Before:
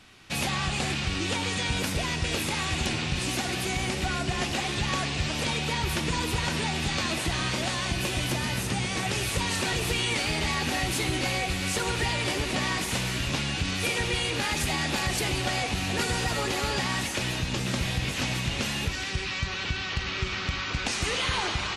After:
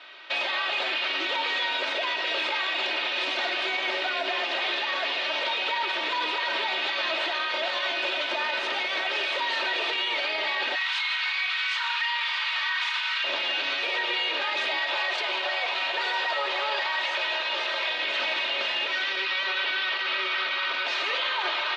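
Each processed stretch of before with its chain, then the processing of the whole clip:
10.75–13.24 steep high-pass 980 Hz + doubler 38 ms -6 dB
14.79–17.9 HPF 420 Hz + bell 1000 Hz +4 dB 0.23 oct
whole clip: Chebyshev band-pass 480–3800 Hz, order 3; comb 3.2 ms, depth 66%; limiter -27 dBFS; gain +8 dB

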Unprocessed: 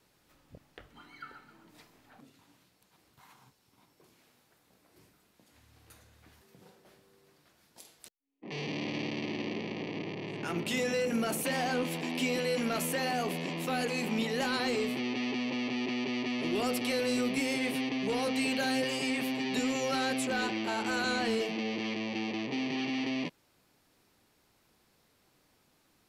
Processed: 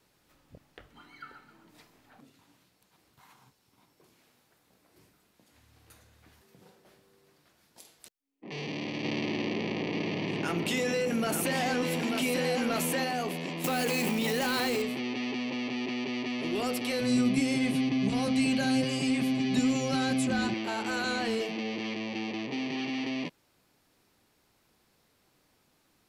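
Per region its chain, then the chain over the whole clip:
9.04–13.04 echo 0.89 s -6 dB + fast leveller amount 50%
13.64–14.82 switching spikes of -33.5 dBFS + fast leveller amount 100%
17–20.54 LPF 11000 Hz 24 dB/oct + tone controls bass +13 dB, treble +3 dB + notch comb 460 Hz
whole clip: dry

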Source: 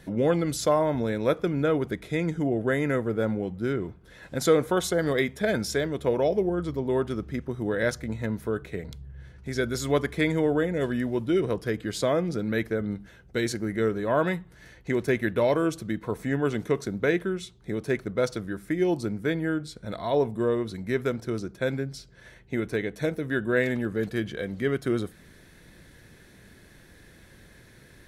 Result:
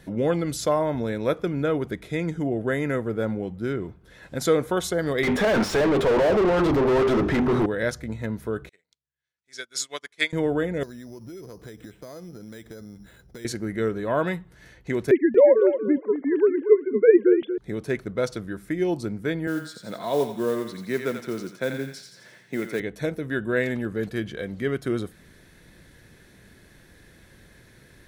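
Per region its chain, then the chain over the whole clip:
5.23–7.66 notches 50/100/150/200/250/300/350/400 Hz + overdrive pedal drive 39 dB, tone 1100 Hz, clips at -12.5 dBFS
8.69–10.33 weighting filter ITU-R 468 + upward expander 2.5:1, over -43 dBFS
10.83–13.45 compressor 10:1, threshold -37 dBFS + careless resampling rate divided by 8×, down filtered, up hold
15.11–17.58 sine-wave speech + resonant low shelf 780 Hz +6.5 dB, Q 1.5 + feedback echo 0.234 s, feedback 17%, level -10 dB
19.47–22.8 HPF 140 Hz 24 dB/oct + thinning echo 86 ms, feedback 55%, high-pass 940 Hz, level -4.5 dB + modulation noise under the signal 23 dB
whole clip: dry

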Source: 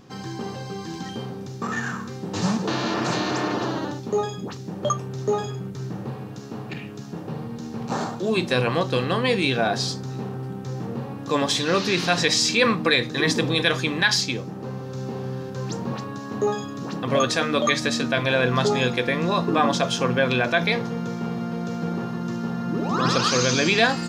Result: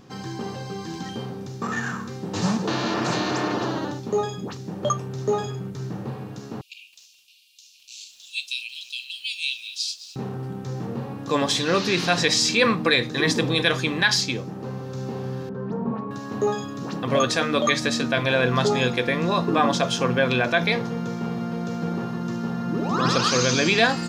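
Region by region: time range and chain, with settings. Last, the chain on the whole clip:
6.61–10.16 steep high-pass 2500 Hz 96 dB/oct + lo-fi delay 0.211 s, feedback 35%, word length 8-bit, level -14 dB
15.49–16.11 LPF 1100 Hz + comb 4.5 ms, depth 66%
whole clip: dry

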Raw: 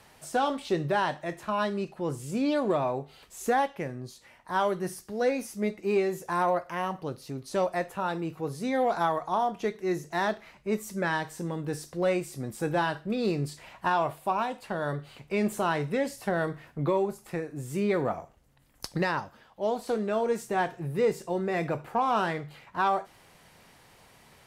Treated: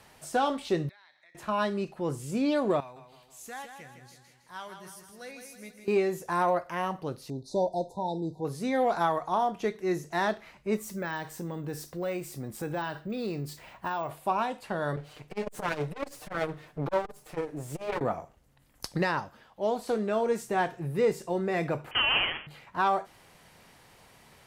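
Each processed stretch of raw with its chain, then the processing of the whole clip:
0.89–1.35 double band-pass 2900 Hz, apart 0.8 oct + compressor 5:1, threshold -56 dBFS
2.8–5.88 passive tone stack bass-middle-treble 5-5-5 + feedback echo 0.16 s, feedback 51%, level -7.5 dB
7.3–8.45 brick-wall FIR band-stop 1000–3500 Hz + air absorption 68 m
10.77–14.11 compressor 2:1, threshold -33 dBFS + careless resampling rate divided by 2×, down none, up hold + mismatched tape noise reduction decoder only
14.96–18.01 minimum comb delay 6.6 ms + bell 470 Hz +5 dB 1.1 oct + core saturation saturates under 440 Hz
21.91–22.47 half-waves squared off + HPF 820 Hz 24 dB/oct + inverted band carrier 3800 Hz
whole clip: dry

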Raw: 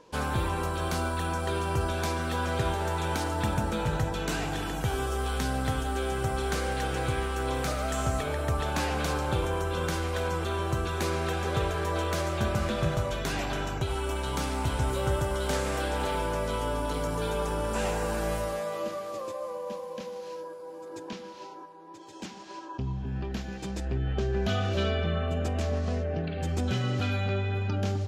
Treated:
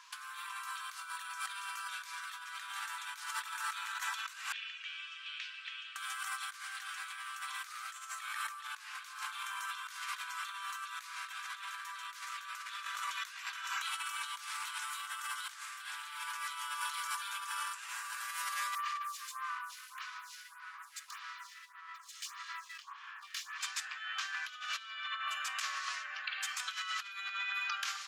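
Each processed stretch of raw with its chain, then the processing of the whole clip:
4.52–5.96 ladder band-pass 2900 Hz, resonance 60% + air absorption 110 m + notch 2100 Hz, Q 24
18.75–23.61 minimum comb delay 1.7 ms + inverse Chebyshev high-pass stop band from 310 Hz, stop band 50 dB + photocell phaser 1.7 Hz
whole clip: Chebyshev high-pass 1100 Hz, order 5; negative-ratio compressor -43 dBFS, ratio -0.5; gain +3 dB

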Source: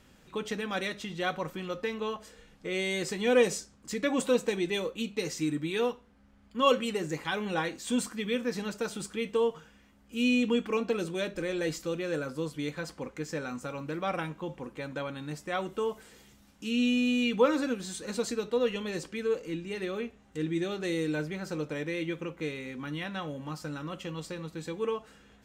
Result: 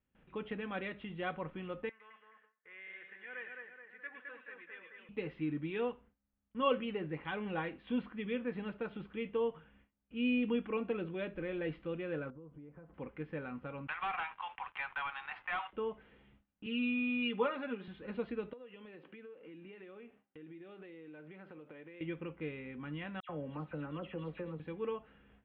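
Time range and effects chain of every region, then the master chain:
1.89–5.09 band-pass 1700 Hz, Q 5.1 + split-band echo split 2000 Hz, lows 0.212 s, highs 0.108 s, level -3.5 dB
12.3–12.94 compressor, threshold -43 dBFS + LPF 1000 Hz
13.87–15.73 Chebyshev band-pass 770–7000 Hz, order 5 + sample leveller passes 3 + three-band squash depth 70%
16.66–17.88 Bessel high-pass 360 Hz + comb 4.9 ms, depth 90%
18.53–22.01 HPF 230 Hz + compressor 16:1, threshold -41 dBFS
23.2–24.6 bell 490 Hz +5 dB 1.3 oct + dispersion lows, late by 92 ms, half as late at 2500 Hz
whole clip: steep low-pass 3100 Hz 48 dB/oct; gate with hold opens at -49 dBFS; low shelf 190 Hz +4.5 dB; gain -7.5 dB

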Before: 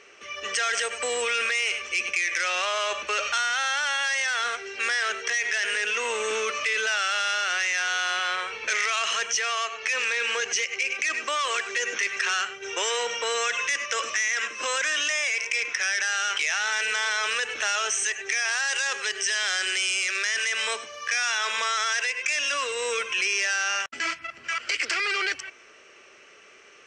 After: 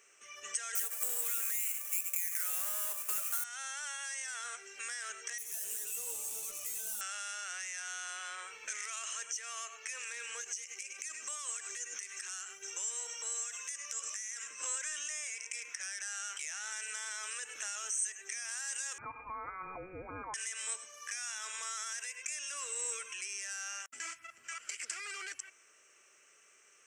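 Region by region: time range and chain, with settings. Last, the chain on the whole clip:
0.75–3.44 half-waves squared off + HPF 500 Hz
5.38–7.01 hard clip -30 dBFS + bell 1700 Hz -14 dB 1.3 oct + doubler 15 ms -2.5 dB
10.41–14.49 compressor, threshold -30 dBFS + tone controls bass 0 dB, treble +6 dB
18.98–20.34 HPF 87 Hz + comb 5.2 ms, depth 51% + inverted band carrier 2800 Hz
whole clip: pre-emphasis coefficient 0.9; compressor 2.5:1, threshold -36 dBFS; EQ curve 1400 Hz 0 dB, 4500 Hz -12 dB, 7500 Hz +4 dB

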